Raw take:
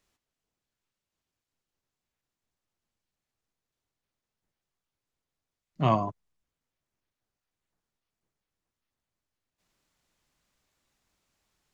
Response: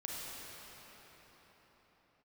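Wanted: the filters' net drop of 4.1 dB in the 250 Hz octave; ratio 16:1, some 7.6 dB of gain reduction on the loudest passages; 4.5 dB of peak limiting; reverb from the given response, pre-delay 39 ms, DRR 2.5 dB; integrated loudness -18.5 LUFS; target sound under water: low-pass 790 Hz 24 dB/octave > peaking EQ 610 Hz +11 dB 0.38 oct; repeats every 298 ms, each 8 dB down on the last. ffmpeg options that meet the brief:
-filter_complex "[0:a]equalizer=f=250:t=o:g=-6,acompressor=threshold=0.0501:ratio=16,alimiter=limit=0.0841:level=0:latency=1,aecho=1:1:298|596|894|1192|1490:0.398|0.159|0.0637|0.0255|0.0102,asplit=2[s0][s1];[1:a]atrim=start_sample=2205,adelay=39[s2];[s1][s2]afir=irnorm=-1:irlink=0,volume=0.631[s3];[s0][s3]amix=inputs=2:normalize=0,lowpass=f=790:w=0.5412,lowpass=f=790:w=1.3066,equalizer=f=610:t=o:w=0.38:g=11,volume=7.94"

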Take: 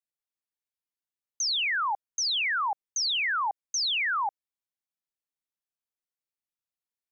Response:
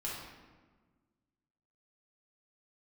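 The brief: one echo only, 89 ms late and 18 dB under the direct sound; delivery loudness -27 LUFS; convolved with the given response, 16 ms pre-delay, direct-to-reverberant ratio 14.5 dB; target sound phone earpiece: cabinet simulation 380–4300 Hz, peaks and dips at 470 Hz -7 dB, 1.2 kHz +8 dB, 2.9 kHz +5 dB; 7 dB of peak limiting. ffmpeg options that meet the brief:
-filter_complex "[0:a]alimiter=level_in=2.37:limit=0.0631:level=0:latency=1,volume=0.422,aecho=1:1:89:0.126,asplit=2[s0][s1];[1:a]atrim=start_sample=2205,adelay=16[s2];[s1][s2]afir=irnorm=-1:irlink=0,volume=0.15[s3];[s0][s3]amix=inputs=2:normalize=0,highpass=380,equalizer=f=470:t=q:w=4:g=-7,equalizer=f=1200:t=q:w=4:g=8,equalizer=f=2900:t=q:w=4:g=5,lowpass=f=4300:w=0.5412,lowpass=f=4300:w=1.3066,volume=1.78"

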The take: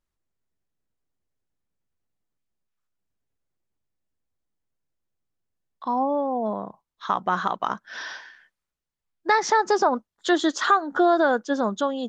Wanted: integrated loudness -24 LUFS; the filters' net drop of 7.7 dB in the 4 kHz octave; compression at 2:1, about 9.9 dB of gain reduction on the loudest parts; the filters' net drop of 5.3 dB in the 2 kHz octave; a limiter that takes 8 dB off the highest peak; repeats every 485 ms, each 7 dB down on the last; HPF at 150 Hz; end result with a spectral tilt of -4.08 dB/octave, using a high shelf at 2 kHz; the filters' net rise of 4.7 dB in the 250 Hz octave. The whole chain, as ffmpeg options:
-af "highpass=150,equalizer=f=250:t=o:g=7,highshelf=f=2000:g=-5,equalizer=f=2000:t=o:g=-4,equalizer=f=4000:t=o:g=-3.5,acompressor=threshold=0.0251:ratio=2,alimiter=limit=0.0631:level=0:latency=1,aecho=1:1:485|970|1455|1940|2425:0.447|0.201|0.0905|0.0407|0.0183,volume=3.16"

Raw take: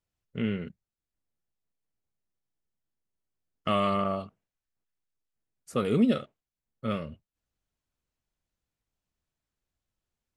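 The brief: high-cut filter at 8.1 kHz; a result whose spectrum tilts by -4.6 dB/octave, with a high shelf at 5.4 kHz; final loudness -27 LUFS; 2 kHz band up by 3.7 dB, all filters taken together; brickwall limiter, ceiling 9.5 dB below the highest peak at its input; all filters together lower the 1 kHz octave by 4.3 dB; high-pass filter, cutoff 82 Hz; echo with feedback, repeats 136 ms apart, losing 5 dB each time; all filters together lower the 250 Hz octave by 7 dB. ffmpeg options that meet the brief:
-af "highpass=82,lowpass=8100,equalizer=f=250:t=o:g=-8,equalizer=f=1000:t=o:g=-8,equalizer=f=2000:t=o:g=8,highshelf=f=5400:g=-8.5,alimiter=level_in=1.19:limit=0.0631:level=0:latency=1,volume=0.841,aecho=1:1:136|272|408|544|680|816|952:0.562|0.315|0.176|0.0988|0.0553|0.031|0.0173,volume=3.55"

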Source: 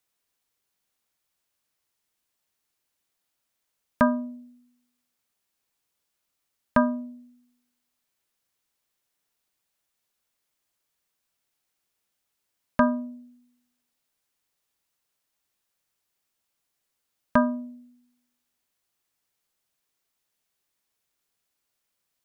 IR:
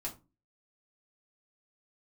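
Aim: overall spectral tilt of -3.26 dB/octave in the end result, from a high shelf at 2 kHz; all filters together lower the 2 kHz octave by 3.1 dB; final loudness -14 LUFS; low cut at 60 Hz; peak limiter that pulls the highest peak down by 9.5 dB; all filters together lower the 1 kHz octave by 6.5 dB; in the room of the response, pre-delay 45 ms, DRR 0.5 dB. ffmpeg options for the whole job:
-filter_complex "[0:a]highpass=60,equalizer=f=1000:t=o:g=-8,highshelf=f=2000:g=7.5,equalizer=f=2000:t=o:g=-4.5,alimiter=limit=0.15:level=0:latency=1,asplit=2[s0][s1];[1:a]atrim=start_sample=2205,adelay=45[s2];[s1][s2]afir=irnorm=-1:irlink=0,volume=0.944[s3];[s0][s3]amix=inputs=2:normalize=0,volume=5.62"

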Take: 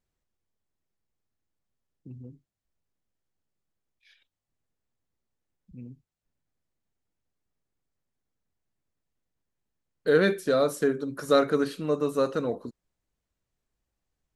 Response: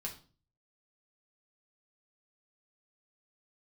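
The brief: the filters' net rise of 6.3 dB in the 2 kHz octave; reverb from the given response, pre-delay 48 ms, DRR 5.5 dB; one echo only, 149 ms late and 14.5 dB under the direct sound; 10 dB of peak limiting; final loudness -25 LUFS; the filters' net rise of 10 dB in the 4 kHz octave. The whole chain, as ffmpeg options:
-filter_complex "[0:a]equalizer=f=2000:t=o:g=7,equalizer=f=4000:t=o:g=9,alimiter=limit=0.178:level=0:latency=1,aecho=1:1:149:0.188,asplit=2[s0][s1];[1:a]atrim=start_sample=2205,adelay=48[s2];[s1][s2]afir=irnorm=-1:irlink=0,volume=0.596[s3];[s0][s3]amix=inputs=2:normalize=0,volume=1.19"

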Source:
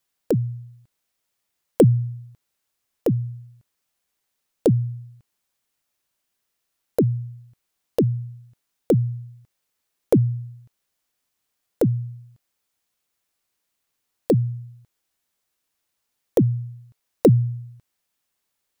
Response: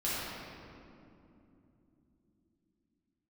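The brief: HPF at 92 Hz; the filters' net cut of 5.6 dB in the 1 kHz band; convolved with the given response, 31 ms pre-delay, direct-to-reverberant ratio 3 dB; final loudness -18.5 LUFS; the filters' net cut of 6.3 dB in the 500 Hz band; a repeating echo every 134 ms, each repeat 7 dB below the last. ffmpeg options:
-filter_complex "[0:a]highpass=92,equalizer=f=500:t=o:g=-7,equalizer=f=1000:t=o:g=-4.5,aecho=1:1:134|268|402|536|670:0.447|0.201|0.0905|0.0407|0.0183,asplit=2[s0][s1];[1:a]atrim=start_sample=2205,adelay=31[s2];[s1][s2]afir=irnorm=-1:irlink=0,volume=0.299[s3];[s0][s3]amix=inputs=2:normalize=0,volume=1.58"

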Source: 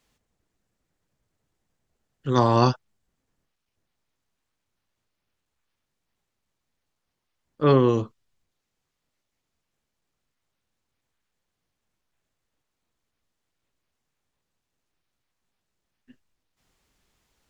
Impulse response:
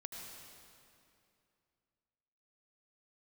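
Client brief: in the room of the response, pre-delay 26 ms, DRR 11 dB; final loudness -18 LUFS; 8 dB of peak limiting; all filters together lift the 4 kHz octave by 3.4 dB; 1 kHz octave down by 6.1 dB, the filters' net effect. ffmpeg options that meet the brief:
-filter_complex "[0:a]equalizer=f=1000:t=o:g=-7.5,equalizer=f=4000:t=o:g=4.5,alimiter=limit=0.178:level=0:latency=1,asplit=2[s0][s1];[1:a]atrim=start_sample=2205,adelay=26[s2];[s1][s2]afir=irnorm=-1:irlink=0,volume=0.376[s3];[s0][s3]amix=inputs=2:normalize=0,volume=2.99"

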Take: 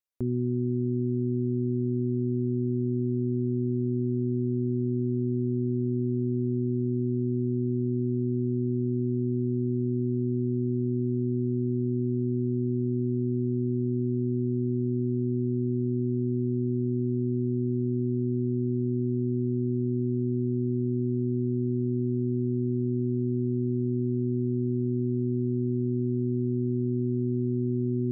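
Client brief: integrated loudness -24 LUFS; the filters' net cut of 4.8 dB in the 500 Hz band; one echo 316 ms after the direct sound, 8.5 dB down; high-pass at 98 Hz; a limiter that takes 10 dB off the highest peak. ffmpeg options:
-af "highpass=98,equalizer=f=500:t=o:g=-8.5,alimiter=level_in=2.51:limit=0.0631:level=0:latency=1,volume=0.398,aecho=1:1:316:0.376,volume=5.96"

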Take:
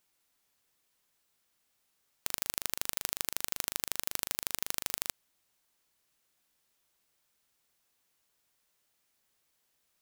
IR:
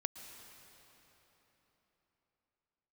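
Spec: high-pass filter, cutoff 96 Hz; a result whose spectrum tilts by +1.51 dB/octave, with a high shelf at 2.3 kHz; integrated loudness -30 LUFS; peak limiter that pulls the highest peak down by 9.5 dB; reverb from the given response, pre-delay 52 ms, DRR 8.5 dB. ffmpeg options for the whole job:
-filter_complex "[0:a]highpass=96,highshelf=f=2300:g=8,alimiter=limit=0.562:level=0:latency=1,asplit=2[s0][s1];[1:a]atrim=start_sample=2205,adelay=52[s2];[s1][s2]afir=irnorm=-1:irlink=0,volume=0.398[s3];[s0][s3]amix=inputs=2:normalize=0,volume=1.58"

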